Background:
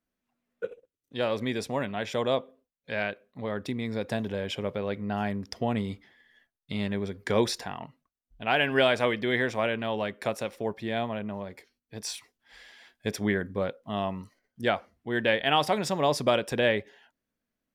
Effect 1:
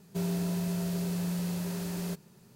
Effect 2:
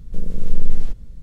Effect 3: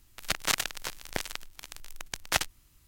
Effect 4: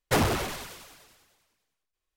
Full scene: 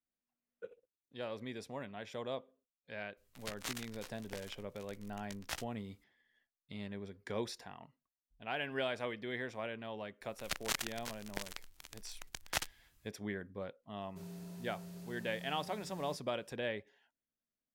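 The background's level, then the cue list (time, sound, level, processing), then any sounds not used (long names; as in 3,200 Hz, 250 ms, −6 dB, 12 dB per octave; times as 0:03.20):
background −14 dB
0:03.17: mix in 3 −15.5 dB + double-tracking delay 17 ms −7.5 dB
0:10.21: mix in 3 −9 dB
0:14.01: mix in 1 −17 dB
not used: 2, 4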